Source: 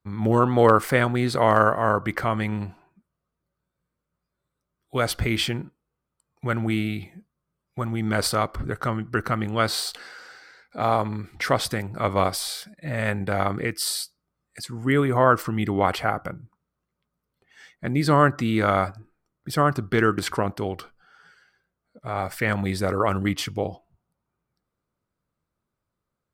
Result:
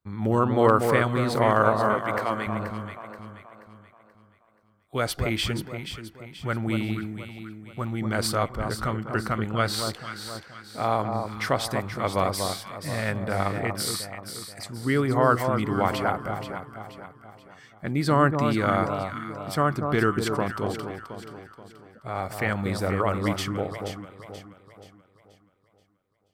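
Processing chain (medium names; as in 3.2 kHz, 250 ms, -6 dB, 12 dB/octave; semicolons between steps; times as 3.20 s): 1.94–2.47 s: high-pass 300 Hz; echo whose repeats swap between lows and highs 240 ms, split 1.2 kHz, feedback 64%, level -5 dB; trim -3 dB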